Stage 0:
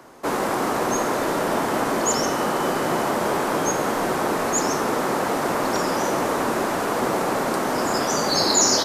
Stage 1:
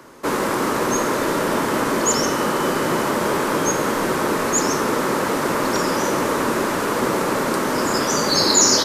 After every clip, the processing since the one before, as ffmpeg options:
-af "equalizer=f=730:t=o:w=0.33:g=-10,volume=1.5"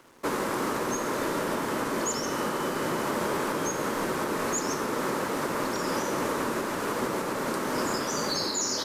-af "aeval=exprs='sgn(val(0))*max(abs(val(0))-0.00447,0)':c=same,alimiter=limit=0.211:level=0:latency=1:release=373,volume=0.562"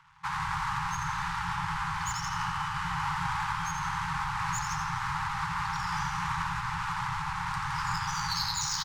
-filter_complex "[0:a]asplit=8[s0][s1][s2][s3][s4][s5][s6][s7];[s1]adelay=84,afreqshift=-110,volume=0.501[s8];[s2]adelay=168,afreqshift=-220,volume=0.269[s9];[s3]adelay=252,afreqshift=-330,volume=0.146[s10];[s4]adelay=336,afreqshift=-440,volume=0.0785[s11];[s5]adelay=420,afreqshift=-550,volume=0.0427[s12];[s6]adelay=504,afreqshift=-660,volume=0.0229[s13];[s7]adelay=588,afreqshift=-770,volume=0.0124[s14];[s0][s8][s9][s10][s11][s12][s13][s14]amix=inputs=8:normalize=0,adynamicsmooth=sensitivity=3:basefreq=3600,afftfilt=real='re*(1-between(b*sr/4096,180,780))':imag='im*(1-between(b*sr/4096,180,780))':win_size=4096:overlap=0.75"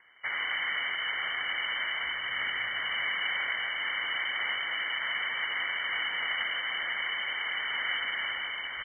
-af "lowpass=f=2600:t=q:w=0.5098,lowpass=f=2600:t=q:w=0.6013,lowpass=f=2600:t=q:w=0.9,lowpass=f=2600:t=q:w=2.563,afreqshift=-3100"

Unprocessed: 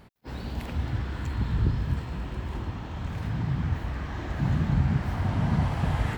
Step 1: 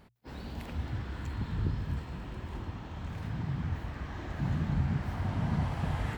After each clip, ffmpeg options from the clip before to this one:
-af "bandreject=f=60:t=h:w=6,bandreject=f=120:t=h:w=6,volume=0.531"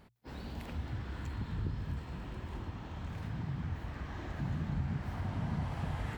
-af "acompressor=threshold=0.0158:ratio=1.5,volume=0.841"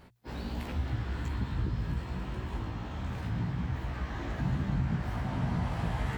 -af "flanger=delay=15.5:depth=2.1:speed=1.3,volume=2.66"

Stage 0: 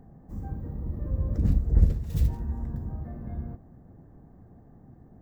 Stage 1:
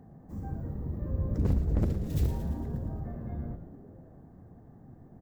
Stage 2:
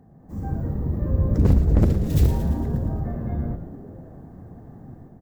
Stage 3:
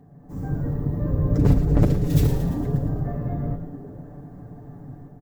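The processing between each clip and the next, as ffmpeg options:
-filter_complex "[0:a]highpass=71,aeval=exprs='0.119*(abs(mod(val(0)/0.119+3,4)-2)-1)':c=same,asplit=8[s0][s1][s2][s3][s4][s5][s6][s7];[s1]adelay=113,afreqshift=-120,volume=0.335[s8];[s2]adelay=226,afreqshift=-240,volume=0.202[s9];[s3]adelay=339,afreqshift=-360,volume=0.12[s10];[s4]adelay=452,afreqshift=-480,volume=0.0724[s11];[s5]adelay=565,afreqshift=-600,volume=0.0437[s12];[s6]adelay=678,afreqshift=-720,volume=0.026[s13];[s7]adelay=791,afreqshift=-840,volume=0.0157[s14];[s0][s8][s9][s10][s11][s12][s13][s14]amix=inputs=8:normalize=0"
-af "dynaudnorm=f=140:g=5:m=3.16"
-af "aecho=1:1:6.9:0.7"

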